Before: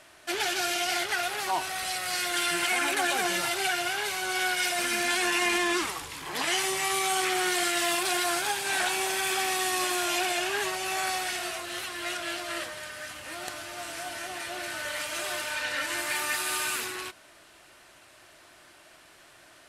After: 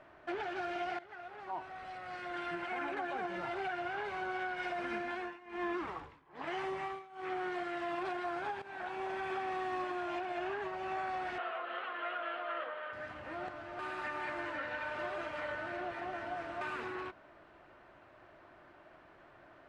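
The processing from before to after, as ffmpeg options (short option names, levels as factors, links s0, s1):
-filter_complex "[0:a]asettb=1/sr,asplit=3[s0][s1][s2];[s0]atrim=end=5.014[s3];[s1]atrim=start=5.01:end=7.56,asetpts=PTS-STARTPTS,afade=t=in:d=0.004:c=qsin,afade=t=out:st=2.546:d=0.004:c=qsin,tremolo=f=1.2:d=0.95[s4];[s2]atrim=start=7.556[s5];[s3][s4]acrossfade=d=0.004:c1=hsin:c2=qsin[s6];[s6][s5]acrossfade=d=0.004:c1=qsin:c2=hsin,asettb=1/sr,asplit=3[s7][s8][s9];[s7]atrim=end=11.384[s10];[s8]atrim=start=11.38:end=12.93,asetpts=PTS-STARTPTS,afade=t=in:d=0.004:c=qsin,afade=t=out:st=1.546:d=0.004:c=qsin,highpass=f=290:w=0.5412,highpass=f=290:w=1.3066,equalizer=f=350:t=q:w=4:g=-10,equalizer=f=490:t=q:w=4:g=6,equalizer=f=1300:t=q:w=4:g=8,equalizer=f=3100:t=q:w=4:g=6,lowpass=f=3600:w=0.5412,lowpass=f=3600:w=1.3066[s11];[s9]atrim=start=12.926[s12];[s10][s11]acrossfade=d=0.004:c1=hsin:c2=qsin[s13];[s13][s12]acrossfade=d=0.004:c1=qsin:c2=hsin,asplit=5[s14][s15][s16][s17][s18];[s14]atrim=end=0.99,asetpts=PTS-STARTPTS,afade=t=out:st=0.986:d=0.004:c=hsin:silence=0.149624[s19];[s15]atrim=start=0.99:end=8.62,asetpts=PTS-STARTPTS,afade=t=in:d=3.3:silence=0.149624,afade=t=out:st=7.626:d=0.004:c=hsin:silence=0.199526[s20];[s16]atrim=start=8.62:end=13.792,asetpts=PTS-STARTPTS,afade=t=in:d=1.13:silence=0.199526[s21];[s17]atrim=start=13.788:end=16.612,asetpts=PTS-STARTPTS,areverse[s22];[s18]atrim=start=16.608[s23];[s19][s20][s21]concat=n=3:v=0:a=1[s24];[s24][s22]acrossfade=d=0.004:c1=hsin:c2=hsin[s25];[s25][s23]acrossfade=d=0.004:c1=hsin:c2=hsin,lowpass=1300,acompressor=threshold=0.0251:ratio=6,alimiter=level_in=1.78:limit=0.0631:level=0:latency=1:release=465,volume=0.562"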